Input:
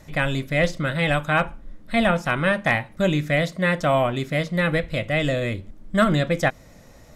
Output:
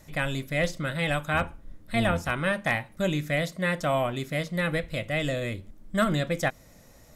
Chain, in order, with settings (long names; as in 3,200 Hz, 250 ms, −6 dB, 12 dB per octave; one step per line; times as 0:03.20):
0:01.33–0:02.31: sub-octave generator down 1 octave, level −2 dB
high-shelf EQ 7,700 Hz +11 dB
level −6 dB